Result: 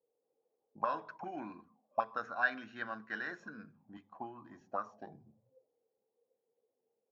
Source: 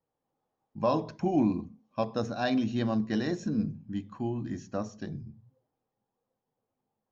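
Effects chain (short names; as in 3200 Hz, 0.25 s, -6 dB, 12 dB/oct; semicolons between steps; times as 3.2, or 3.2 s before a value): auto-wah 460–1500 Hz, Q 6.5, up, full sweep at -27 dBFS; 3.97–4.61 three-band expander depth 40%; gain +10 dB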